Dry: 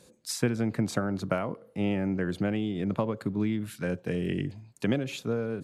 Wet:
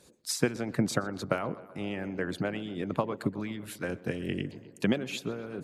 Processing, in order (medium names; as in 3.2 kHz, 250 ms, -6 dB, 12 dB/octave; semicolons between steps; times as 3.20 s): tape echo 124 ms, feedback 73%, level -15 dB, low-pass 3.1 kHz; harmonic-percussive split harmonic -14 dB; trim +3 dB